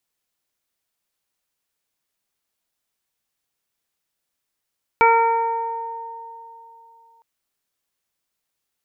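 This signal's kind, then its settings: additive tone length 2.21 s, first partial 459 Hz, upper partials 5.5/-1/-13/0 dB, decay 2.64 s, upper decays 3.21/1.14/1.78/1.03 s, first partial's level -17 dB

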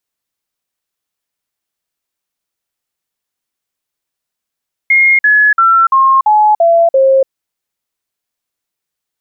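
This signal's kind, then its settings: stepped sine 2.14 kHz down, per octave 3, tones 7, 0.29 s, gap 0.05 s -5 dBFS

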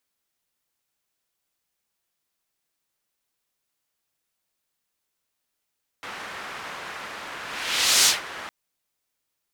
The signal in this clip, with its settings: whoosh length 2.46 s, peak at 2.03 s, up 0.69 s, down 0.17 s, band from 1.5 kHz, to 5.7 kHz, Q 1, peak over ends 19.5 dB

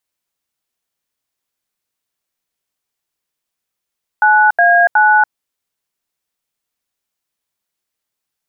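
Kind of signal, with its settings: DTMF "9A9", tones 286 ms, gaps 80 ms, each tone -9.5 dBFS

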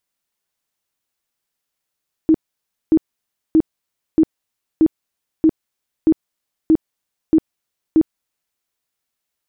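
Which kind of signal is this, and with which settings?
tone bursts 318 Hz, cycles 17, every 0.63 s, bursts 10, -8 dBFS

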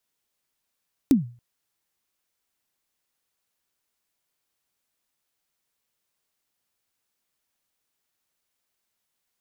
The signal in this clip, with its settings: kick drum length 0.28 s, from 300 Hz, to 120 Hz, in 137 ms, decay 0.38 s, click on, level -10 dB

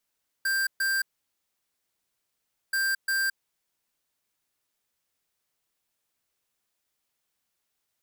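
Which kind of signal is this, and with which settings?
beep pattern square 1.58 kHz, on 0.22 s, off 0.13 s, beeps 2, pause 1.71 s, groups 2, -26 dBFS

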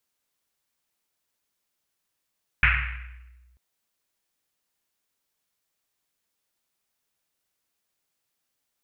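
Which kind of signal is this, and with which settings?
Risset drum length 0.94 s, pitch 61 Hz, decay 1.57 s, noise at 2 kHz, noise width 1.3 kHz, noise 55%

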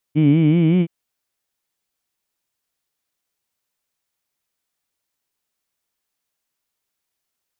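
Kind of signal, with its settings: formant-synthesis vowel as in heed, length 0.72 s, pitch 145 Hz, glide +3.5 st, vibrato depth 1.15 st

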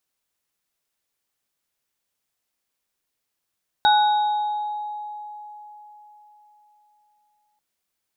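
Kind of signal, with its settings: sine partials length 3.74 s, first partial 839 Hz, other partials 1.48/3.77 kHz, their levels -8.5/-7 dB, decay 4.07 s, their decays 1.10/1.56 s, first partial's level -13 dB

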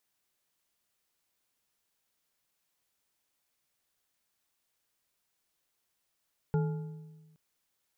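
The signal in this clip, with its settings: metal hit bar, length 0.82 s, lowest mode 157 Hz, modes 4, decay 1.36 s, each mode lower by 7 dB, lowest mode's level -24 dB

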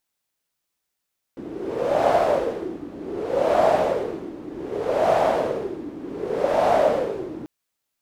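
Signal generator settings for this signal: wind-like swept noise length 6.09 s, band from 310 Hz, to 660 Hz, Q 5.3, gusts 4, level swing 16.5 dB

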